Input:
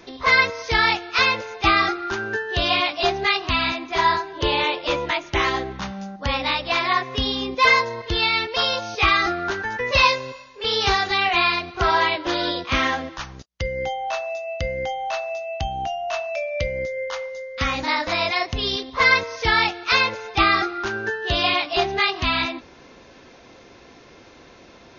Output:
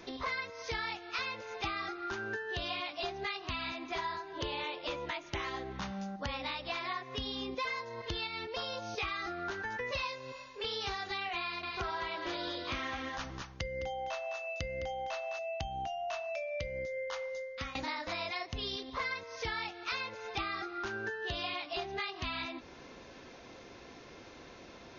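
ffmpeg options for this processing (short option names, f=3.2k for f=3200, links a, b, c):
-filter_complex "[0:a]asettb=1/sr,asplit=3[a][b][c];[a]atrim=end=8.274[d];[b]atrim=start=8.27:end=8.98,asetpts=PTS-STARTPTS,afade=t=in:d=0.004:c=qsin,afade=t=out:st=0.706:d=0.004:c=qsin,equalizer=f=2.8k:w=0.3:g=-6[e];[c]atrim=start=8.976[f];[d][e]acrossfade=d=0.004:c1=hsin:c2=qsin[g];[g][f]acrossfade=d=0.004:c1=qsin:c2=hsin,asettb=1/sr,asplit=3[h][i][j];[h]atrim=end=11.424[k];[i]atrim=start=11.42:end=15.39,asetpts=PTS-STARTPTS,afade=t=in:d=0.004:c=qsin,afade=t=out:st=3.966:d=0.004:c=qsin,aecho=1:1:210:0.398,atrim=end_sample=175077[l];[j]atrim=start=15.386[m];[k][l]acrossfade=d=0.004:c1=hsin:c2=qsin[n];[n][m]acrossfade=d=0.004:c1=qsin:c2=hsin,asplit=2[o][p];[o]atrim=end=17.75,asetpts=PTS-STARTPTS,afade=t=out:st=17.34:d=0.41:silence=0.1[q];[p]atrim=start=17.75,asetpts=PTS-STARTPTS,afade=t=in:d=0.004:c=hsin:silence=0.1[r];[q][r]concat=n=2:v=0:a=1,acompressor=threshold=-31dB:ratio=6,volume=-4.5dB"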